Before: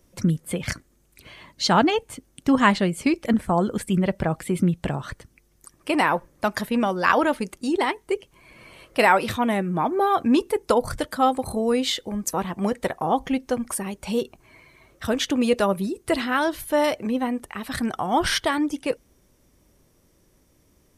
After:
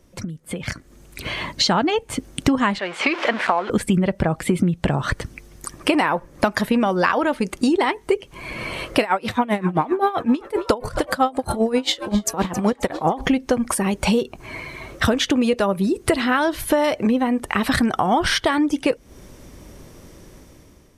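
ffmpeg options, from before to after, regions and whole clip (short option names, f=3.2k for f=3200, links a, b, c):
-filter_complex "[0:a]asettb=1/sr,asplit=3[a][b][c];[a]atrim=end=2.794[d];[b]atrim=start=2.79:end=3.7,asetpts=PTS-STARTPTS,afade=t=in:d=0.004:c=qsin,afade=t=out:st=0.906:d=0.004:c=qsin,aeval=exprs='val(0)+0.5*0.0335*sgn(val(0))':c=same,highpass=760,lowpass=3k[e];[c]atrim=start=3.696[f];[d][e]acrossfade=d=0.004:c1=hsin:c2=qsin[g];[g][f]acrossfade=d=0.004:c1=qsin:c2=hsin,asettb=1/sr,asplit=3[h][i][j];[h]atrim=end=9.014[k];[i]atrim=start=9.01:end=13.21,asetpts=PTS-STARTPTS,afade=t=in:d=0.004:c=qsin,afade=t=out:st=4.196:d=0.004:c=qsin,asplit=6[l][m][n][o][p][q];[m]adelay=268,afreqshift=90,volume=-20.5dB[r];[n]adelay=536,afreqshift=180,volume=-24.5dB[s];[o]adelay=804,afreqshift=270,volume=-28.5dB[t];[p]adelay=1072,afreqshift=360,volume=-32.5dB[u];[q]adelay=1340,afreqshift=450,volume=-36.6dB[v];[l][r][s][t][u][v]amix=inputs=6:normalize=0,atrim=end_sample=185220,aeval=exprs='val(0)*pow(10,-20*(0.5-0.5*cos(2*PI*7.6*n/s))/20)':c=same[w];[j]atrim=start=13.206[x];[k][w]acrossfade=d=0.004:c1=hsin:c2=qsin[y];[y][x]acrossfade=d=0.004:c1=qsin:c2=hsin,acompressor=threshold=-34dB:ratio=12,highshelf=f=8.6k:g=-9.5,dynaudnorm=f=340:g=5:m=13dB,volume=5.5dB"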